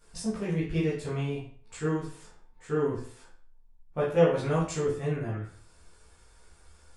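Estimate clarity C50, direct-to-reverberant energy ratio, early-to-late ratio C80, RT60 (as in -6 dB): 4.0 dB, -10.0 dB, 9.0 dB, 0.45 s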